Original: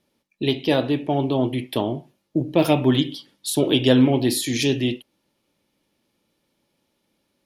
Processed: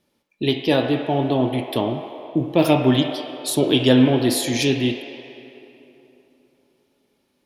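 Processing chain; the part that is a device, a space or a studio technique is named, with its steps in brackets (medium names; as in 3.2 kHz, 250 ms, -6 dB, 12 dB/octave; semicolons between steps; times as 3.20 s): filtered reverb send (on a send: high-pass 550 Hz 12 dB/octave + low-pass 3.2 kHz 12 dB/octave + reverberation RT60 3.2 s, pre-delay 9 ms, DRR 4 dB); on the sum: trim +1 dB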